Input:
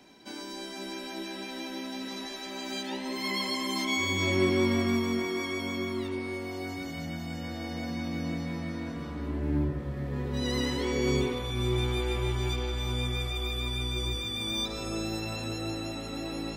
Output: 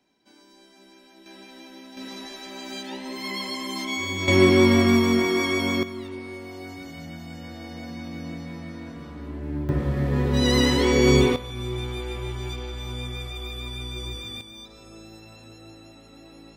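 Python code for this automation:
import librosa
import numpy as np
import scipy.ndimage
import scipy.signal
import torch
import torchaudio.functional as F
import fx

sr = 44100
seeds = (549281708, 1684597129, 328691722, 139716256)

y = fx.gain(x, sr, db=fx.steps((0.0, -14.0), (1.26, -7.0), (1.97, 0.0), (4.28, 9.0), (5.83, -2.0), (9.69, 10.0), (11.36, -2.0), (14.41, -12.0)))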